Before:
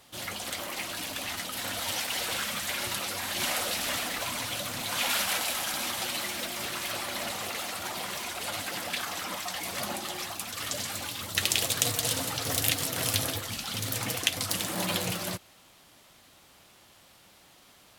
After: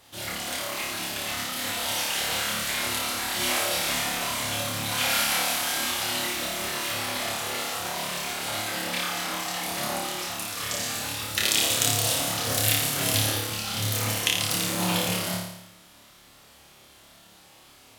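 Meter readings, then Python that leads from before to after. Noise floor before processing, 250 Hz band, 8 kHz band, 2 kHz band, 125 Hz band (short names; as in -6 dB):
-58 dBFS, +5.0 dB, +4.5 dB, +4.5 dB, +6.0 dB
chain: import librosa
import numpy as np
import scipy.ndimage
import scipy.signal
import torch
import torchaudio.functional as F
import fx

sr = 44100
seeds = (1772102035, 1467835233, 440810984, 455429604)

y = fx.room_flutter(x, sr, wall_m=4.8, rt60_s=0.83)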